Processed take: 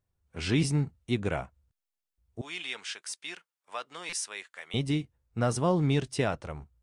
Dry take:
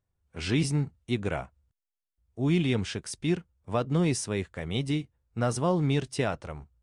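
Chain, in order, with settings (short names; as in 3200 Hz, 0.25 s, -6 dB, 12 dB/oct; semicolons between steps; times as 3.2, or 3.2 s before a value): 2.41–4.74 HPF 1200 Hz 12 dB/oct; stuck buffer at 3.09/4.09, samples 256, times 5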